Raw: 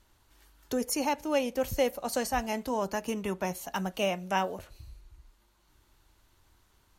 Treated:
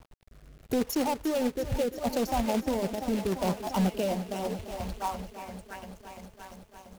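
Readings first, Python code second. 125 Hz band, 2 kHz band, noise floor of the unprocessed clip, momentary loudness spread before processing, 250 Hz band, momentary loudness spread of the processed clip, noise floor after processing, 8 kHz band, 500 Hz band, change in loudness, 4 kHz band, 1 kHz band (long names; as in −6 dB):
+6.5 dB, −4.5 dB, −67 dBFS, 6 LU, +5.0 dB, 18 LU, −57 dBFS, −2.5 dB, +1.0 dB, +0.5 dB, −1.0 dB, 0.0 dB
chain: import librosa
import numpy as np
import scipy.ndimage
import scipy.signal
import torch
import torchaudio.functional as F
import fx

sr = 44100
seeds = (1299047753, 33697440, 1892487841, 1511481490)

p1 = fx.wiener(x, sr, points=25)
p2 = fx.dereverb_blind(p1, sr, rt60_s=1.3)
p3 = p2 + fx.echo_stepped(p2, sr, ms=692, hz=1100.0, octaves=0.7, feedback_pct=70, wet_db=-7, dry=0)
p4 = 10.0 ** (-18.0 / 20.0) * np.tanh(p3 / 10.0 ** (-18.0 / 20.0))
p5 = fx.over_compress(p4, sr, threshold_db=-34.0, ratio=-0.5)
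p6 = p4 + (p5 * 10.0 ** (0.0 / 20.0))
p7 = fx.peak_eq(p6, sr, hz=4300.0, db=-9.5, octaves=1.1)
p8 = fx.env_phaser(p7, sr, low_hz=270.0, high_hz=1700.0, full_db=-34.0)
p9 = fx.quant_companded(p8, sr, bits=4)
p10 = fx.rotary(p9, sr, hz=0.75)
p11 = fx.echo_crushed(p10, sr, ms=343, feedback_pct=80, bits=10, wet_db=-13)
y = p11 * 10.0 ** (3.0 / 20.0)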